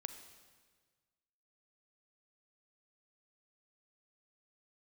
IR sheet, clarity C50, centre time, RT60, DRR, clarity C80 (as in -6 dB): 9.0 dB, 18 ms, 1.5 s, 8.5 dB, 10.5 dB